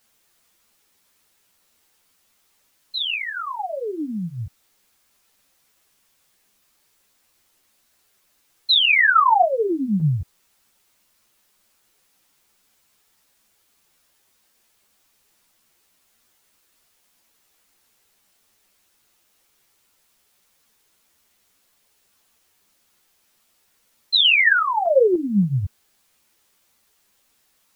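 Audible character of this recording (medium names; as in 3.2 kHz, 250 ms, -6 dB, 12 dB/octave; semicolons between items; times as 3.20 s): random-step tremolo; a quantiser's noise floor 12-bit, dither triangular; a shimmering, thickened sound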